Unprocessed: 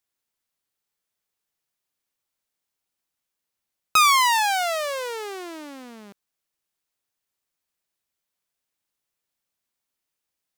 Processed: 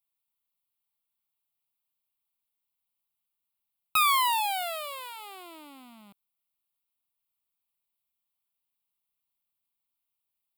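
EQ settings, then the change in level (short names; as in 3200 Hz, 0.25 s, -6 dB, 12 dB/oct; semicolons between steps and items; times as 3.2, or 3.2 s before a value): high shelf 8400 Hz +8.5 dB; fixed phaser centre 1700 Hz, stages 6; -5.5 dB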